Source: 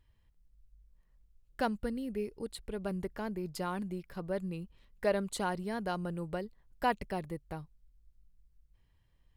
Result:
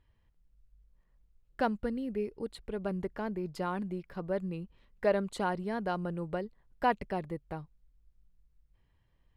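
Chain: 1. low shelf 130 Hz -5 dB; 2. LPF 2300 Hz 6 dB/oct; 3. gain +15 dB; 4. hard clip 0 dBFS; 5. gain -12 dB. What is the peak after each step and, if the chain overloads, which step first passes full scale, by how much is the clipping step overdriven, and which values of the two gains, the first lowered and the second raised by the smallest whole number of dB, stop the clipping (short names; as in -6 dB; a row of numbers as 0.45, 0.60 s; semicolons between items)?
-17.0, -17.5, -2.5, -2.5, -14.5 dBFS; no overload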